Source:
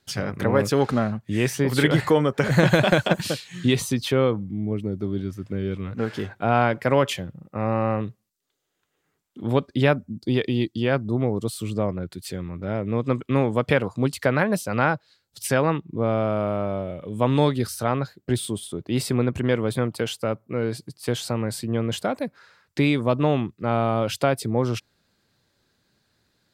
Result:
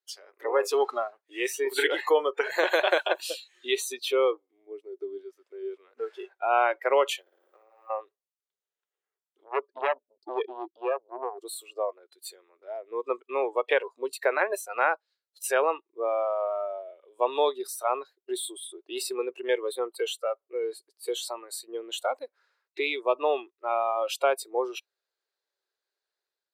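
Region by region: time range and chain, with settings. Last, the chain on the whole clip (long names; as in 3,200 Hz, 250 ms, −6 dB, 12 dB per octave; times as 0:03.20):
0:07.21–0:07.90: mu-law and A-law mismatch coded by mu + flutter between parallel walls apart 9.4 metres, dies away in 1.1 s + downward compressor 20 to 1, threshold −32 dBFS
0:09.44–0:11.38: spectral envelope exaggerated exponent 1.5 + saturating transformer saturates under 1,300 Hz
whole clip: noise reduction from a noise print of the clip's start 17 dB; elliptic high-pass filter 390 Hz, stop band 50 dB; automatic gain control gain up to 6 dB; level −6.5 dB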